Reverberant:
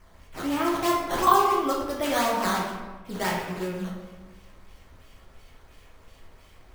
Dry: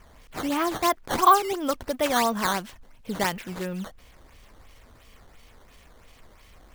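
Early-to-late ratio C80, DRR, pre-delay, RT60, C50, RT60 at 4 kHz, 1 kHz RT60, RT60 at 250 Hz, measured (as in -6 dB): 4.0 dB, -3.5 dB, 3 ms, 1.2 s, 1.5 dB, 0.80 s, 1.2 s, 1.5 s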